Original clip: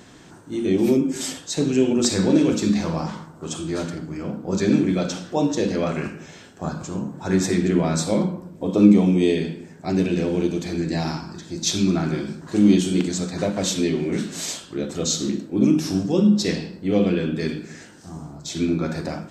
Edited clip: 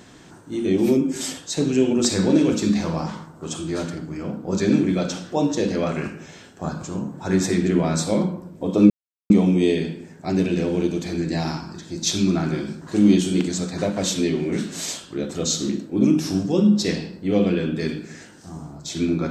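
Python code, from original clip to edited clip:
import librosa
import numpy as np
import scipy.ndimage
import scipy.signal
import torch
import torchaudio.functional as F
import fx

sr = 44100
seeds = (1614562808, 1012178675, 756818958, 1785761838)

y = fx.edit(x, sr, fx.insert_silence(at_s=8.9, length_s=0.4), tone=tone)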